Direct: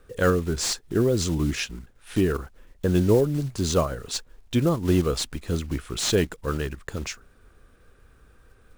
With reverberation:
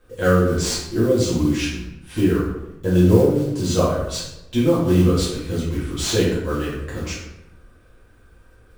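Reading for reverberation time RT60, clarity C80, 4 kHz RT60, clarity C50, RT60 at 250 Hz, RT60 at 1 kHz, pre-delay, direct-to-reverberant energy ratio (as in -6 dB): 0.85 s, 5.0 dB, 0.60 s, 1.5 dB, 1.1 s, 0.80 s, 4 ms, -9.0 dB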